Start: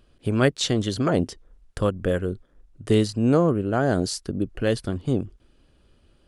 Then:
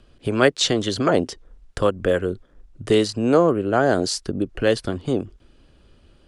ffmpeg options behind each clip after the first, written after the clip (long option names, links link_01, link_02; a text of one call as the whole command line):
ffmpeg -i in.wav -filter_complex "[0:a]lowpass=8700,acrossover=split=290|940|1700[link_01][link_02][link_03][link_04];[link_01]acompressor=threshold=-33dB:ratio=6[link_05];[link_05][link_02][link_03][link_04]amix=inputs=4:normalize=0,volume=5.5dB" out.wav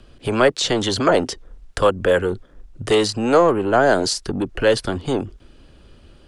ffmpeg -i in.wav -filter_complex "[0:a]acrossover=split=490|880[link_01][link_02][link_03];[link_01]asoftclip=type=tanh:threshold=-26dB[link_04];[link_03]alimiter=limit=-17dB:level=0:latency=1:release=95[link_05];[link_04][link_02][link_05]amix=inputs=3:normalize=0,volume=6dB" out.wav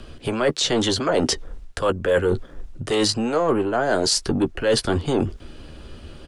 ffmpeg -i in.wav -filter_complex "[0:a]areverse,acompressor=threshold=-25dB:ratio=10,areverse,asplit=2[link_01][link_02];[link_02]adelay=13,volume=-10dB[link_03];[link_01][link_03]amix=inputs=2:normalize=0,volume=7.5dB" out.wav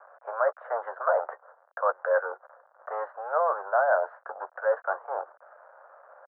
ffmpeg -i in.wav -af "aeval=exprs='val(0)*gte(abs(val(0)),0.00944)':channel_layout=same,asuperpass=centerf=930:order=12:qfactor=0.9" out.wav